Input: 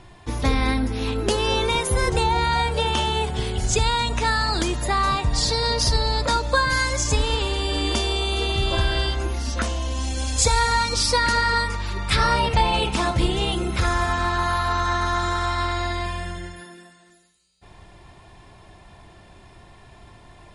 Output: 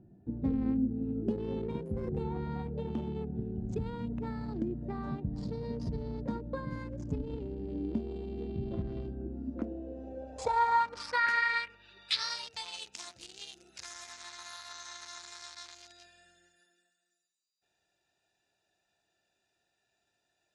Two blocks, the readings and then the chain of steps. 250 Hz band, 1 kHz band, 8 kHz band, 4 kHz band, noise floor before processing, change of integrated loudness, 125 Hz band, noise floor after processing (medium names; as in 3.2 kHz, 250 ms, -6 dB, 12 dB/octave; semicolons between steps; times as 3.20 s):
-6.0 dB, -13.5 dB, -22.0 dB, -18.0 dB, -49 dBFS, -13.0 dB, -14.0 dB, -81 dBFS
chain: local Wiener filter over 41 samples; band-pass sweep 210 Hz -> 6.3 kHz, 9.26–12.53 s; tape noise reduction on one side only encoder only